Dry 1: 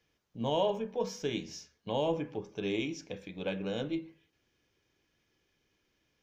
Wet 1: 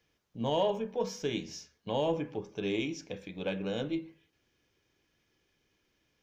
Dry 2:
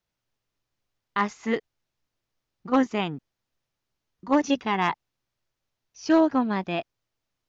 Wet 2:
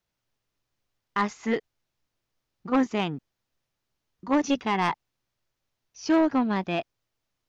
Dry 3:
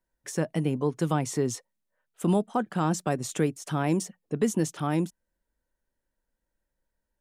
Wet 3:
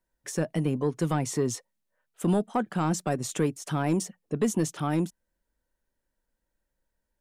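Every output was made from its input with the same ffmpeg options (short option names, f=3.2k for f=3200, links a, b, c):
-af "asoftclip=type=tanh:threshold=-16dB,volume=1dB"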